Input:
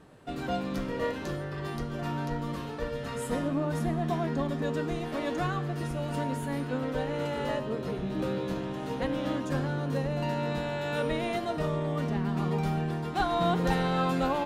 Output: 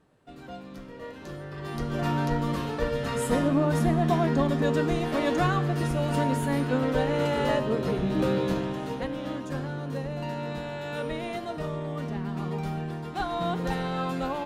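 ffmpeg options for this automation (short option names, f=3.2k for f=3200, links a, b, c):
-af "volume=6dB,afade=t=in:st=1.06:d=0.6:silence=0.354813,afade=t=in:st=1.66:d=0.32:silence=0.446684,afade=t=out:st=8.47:d=0.63:silence=0.375837"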